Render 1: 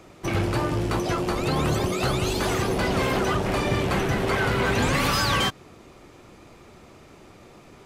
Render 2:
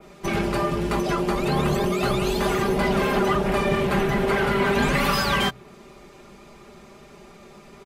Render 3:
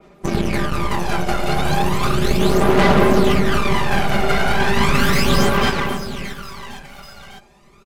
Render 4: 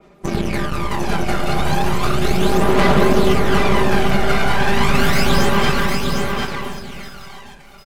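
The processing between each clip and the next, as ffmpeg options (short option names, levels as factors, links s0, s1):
-af "aecho=1:1:5:0.78,bandreject=f=61.98:t=h:w=4,bandreject=f=123.96:t=h:w=4,adynamicequalizer=threshold=0.00794:dfrequency=6300:dqfactor=0.75:tfrequency=6300:tqfactor=0.75:attack=5:release=100:ratio=0.375:range=3:mode=cutabove:tftype=bell"
-af "aeval=exprs='0.335*(cos(1*acos(clip(val(0)/0.335,-1,1)))-cos(1*PI/2))+0.075*(cos(4*acos(clip(val(0)/0.335,-1,1)))-cos(4*PI/2))+0.075*(cos(6*acos(clip(val(0)/0.335,-1,1)))-cos(6*PI/2))+0.0299*(cos(7*acos(clip(val(0)/0.335,-1,1)))-cos(7*PI/2))':c=same,aecho=1:1:210|483|837.9|1299|1899:0.631|0.398|0.251|0.158|0.1,aphaser=in_gain=1:out_gain=1:delay=1.4:decay=0.55:speed=0.35:type=sinusoidal,volume=1.12"
-af "aecho=1:1:754:0.596,volume=0.891"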